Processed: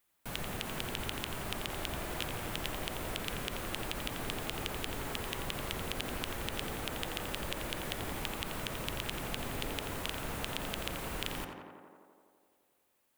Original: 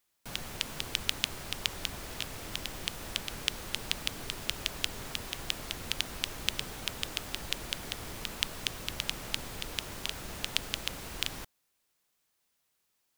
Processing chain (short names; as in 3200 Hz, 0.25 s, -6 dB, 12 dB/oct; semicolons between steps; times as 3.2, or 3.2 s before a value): bell 5300 Hz -7.5 dB 1.1 oct; limiter -17 dBFS, peak gain reduction 10.5 dB; on a send: tape echo 86 ms, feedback 83%, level -3.5 dB, low-pass 2400 Hz; on the sum: gain +2.5 dB